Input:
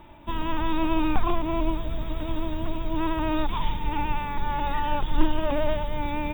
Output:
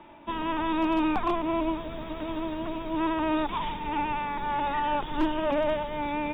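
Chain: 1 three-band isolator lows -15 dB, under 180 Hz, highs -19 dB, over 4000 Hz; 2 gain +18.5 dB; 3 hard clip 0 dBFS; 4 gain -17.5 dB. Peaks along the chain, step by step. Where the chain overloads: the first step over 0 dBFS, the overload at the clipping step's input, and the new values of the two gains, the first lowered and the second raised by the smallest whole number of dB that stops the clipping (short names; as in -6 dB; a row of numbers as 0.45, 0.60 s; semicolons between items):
-14.5, +4.0, 0.0, -17.5 dBFS; step 2, 4.0 dB; step 2 +14.5 dB, step 4 -13.5 dB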